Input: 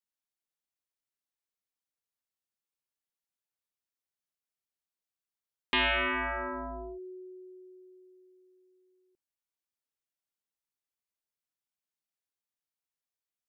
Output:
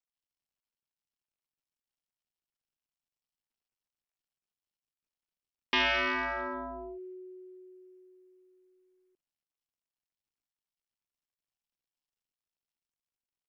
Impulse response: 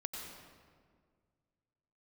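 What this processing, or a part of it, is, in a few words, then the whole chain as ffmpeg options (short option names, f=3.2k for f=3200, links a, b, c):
Bluetooth headset: -af "highpass=f=120:p=1,aresample=16000,aresample=44100" -ar 44100 -c:a sbc -b:a 64k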